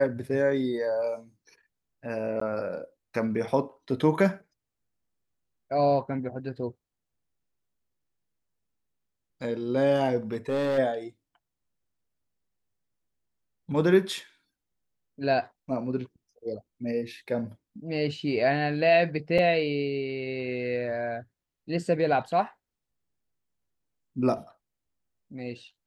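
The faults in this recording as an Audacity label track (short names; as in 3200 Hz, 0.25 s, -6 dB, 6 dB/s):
2.400000	2.410000	gap 14 ms
10.320000	10.790000	clipped -23 dBFS
19.380000	19.380000	gap 4.7 ms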